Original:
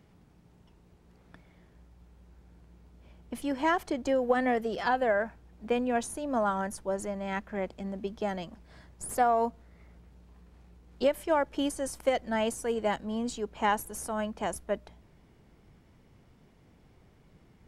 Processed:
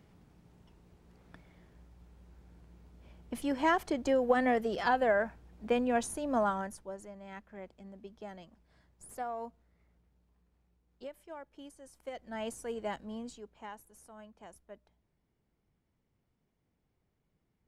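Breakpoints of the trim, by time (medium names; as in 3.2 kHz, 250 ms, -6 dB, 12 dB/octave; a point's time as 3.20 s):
6.42 s -1 dB
7.02 s -13.5 dB
9.43 s -13.5 dB
11.33 s -20 dB
11.89 s -20 dB
12.49 s -8 dB
13.12 s -8 dB
13.69 s -19.5 dB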